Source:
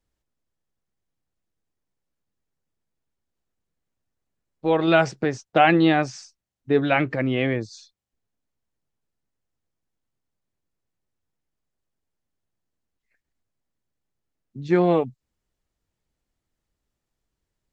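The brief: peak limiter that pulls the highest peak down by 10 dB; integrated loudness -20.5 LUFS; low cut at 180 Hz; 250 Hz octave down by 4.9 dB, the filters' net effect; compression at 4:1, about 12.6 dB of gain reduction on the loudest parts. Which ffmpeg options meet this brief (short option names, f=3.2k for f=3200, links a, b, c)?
-af "highpass=180,equalizer=f=250:t=o:g=-6.5,acompressor=threshold=-28dB:ratio=4,volume=15dB,alimiter=limit=-8.5dB:level=0:latency=1"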